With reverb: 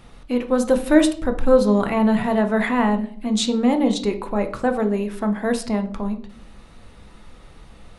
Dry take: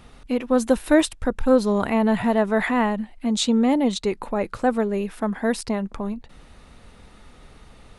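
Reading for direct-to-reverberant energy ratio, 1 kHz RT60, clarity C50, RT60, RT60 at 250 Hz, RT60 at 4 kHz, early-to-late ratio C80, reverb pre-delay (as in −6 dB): 6.0 dB, 0.45 s, 13.0 dB, 0.50 s, 0.80 s, 0.35 s, 17.5 dB, 5 ms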